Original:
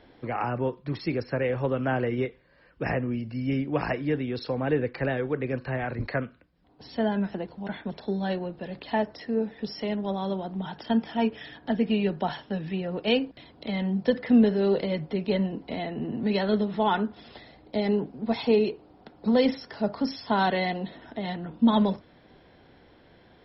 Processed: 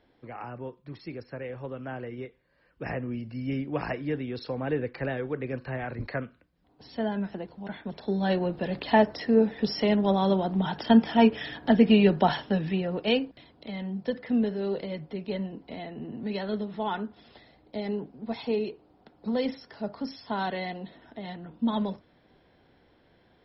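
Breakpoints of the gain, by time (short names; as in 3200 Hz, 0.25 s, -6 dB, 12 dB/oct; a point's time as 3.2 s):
2.23 s -10.5 dB
3.18 s -3.5 dB
7.81 s -3.5 dB
8.51 s +6 dB
12.4 s +6 dB
13.69 s -6.5 dB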